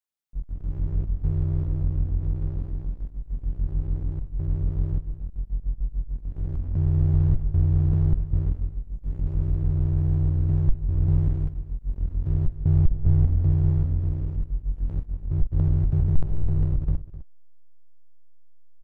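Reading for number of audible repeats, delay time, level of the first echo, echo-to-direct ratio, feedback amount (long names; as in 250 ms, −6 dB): 1, 256 ms, −15.0 dB, −15.0 dB, repeats not evenly spaced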